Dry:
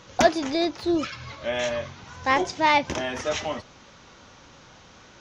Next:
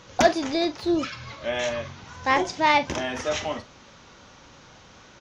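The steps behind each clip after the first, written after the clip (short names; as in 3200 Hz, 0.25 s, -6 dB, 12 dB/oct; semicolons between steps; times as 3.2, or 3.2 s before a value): doubler 43 ms -13 dB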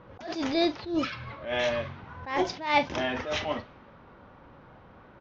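low-pass opened by the level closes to 1200 Hz, open at -18.5 dBFS; LPF 5400 Hz 24 dB/oct; attack slew limiter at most 120 dB/s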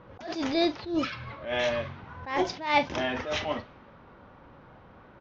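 nothing audible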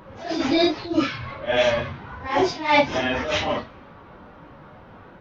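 phase scrambler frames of 0.1 s; gain +7 dB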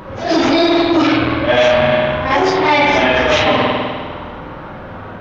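spring tank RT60 1.7 s, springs 50 ms, chirp 35 ms, DRR 0 dB; maximiser +14 dB; core saturation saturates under 500 Hz; gain -1.5 dB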